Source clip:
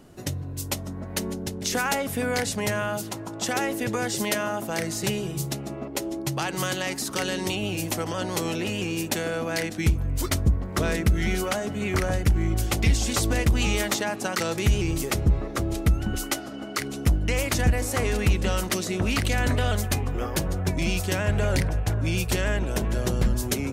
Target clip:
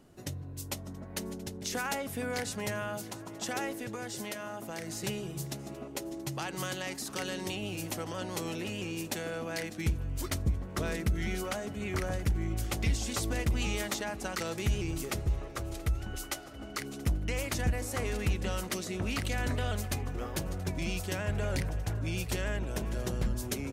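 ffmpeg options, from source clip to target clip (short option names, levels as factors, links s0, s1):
-filter_complex "[0:a]asplit=3[s0][s1][s2];[s0]afade=t=out:st=3.72:d=0.02[s3];[s1]acompressor=threshold=0.0447:ratio=6,afade=t=in:st=3.72:d=0.02,afade=t=out:st=4.88:d=0.02[s4];[s2]afade=t=in:st=4.88:d=0.02[s5];[s3][s4][s5]amix=inputs=3:normalize=0,asettb=1/sr,asplit=3[s6][s7][s8];[s6]atrim=end=15.204[s9];[s7]atrim=start=15.2:end=16.59,asetpts=PTS-STARTPTS,afade=t=in:d=0.004:c=qsin,afade=t=out:st=1.386:d=0.004:c=qsin,equalizer=f=220:t=o:w=1.1:g=-9.5[s10];[s8]atrim=start=16.586[s11];[s9][s10]acrossfade=d=0.004:c1=hsin:c2=qsin[s12];[s12][s11]acrossfade=d=0.004:c1=qsin:c2=hsin,aecho=1:1:678|1356|2034|2712|3390:0.0944|0.0548|0.0318|0.0184|0.0107,volume=0.376"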